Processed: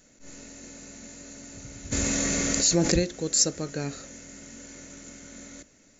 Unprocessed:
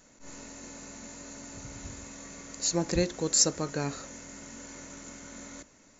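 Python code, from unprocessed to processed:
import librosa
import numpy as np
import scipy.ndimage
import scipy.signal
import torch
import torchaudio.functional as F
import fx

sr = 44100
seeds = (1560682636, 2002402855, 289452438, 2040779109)

y = fx.peak_eq(x, sr, hz=1000.0, db=-10.5, octaves=0.67)
y = fx.env_flatten(y, sr, amount_pct=70, at=(1.91, 2.98), fade=0.02)
y = y * 10.0 ** (1.0 / 20.0)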